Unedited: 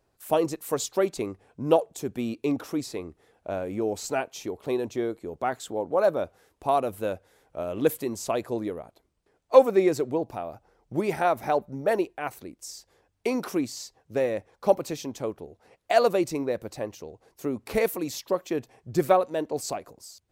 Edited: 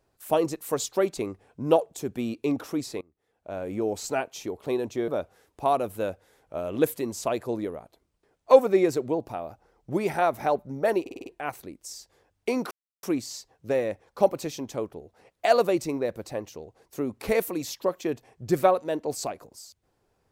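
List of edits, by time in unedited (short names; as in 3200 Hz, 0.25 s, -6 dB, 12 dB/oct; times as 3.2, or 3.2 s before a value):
3.01–3.69 fade in quadratic, from -23.5 dB
5.08–6.11 cut
12.04 stutter 0.05 s, 6 plays
13.49 insert silence 0.32 s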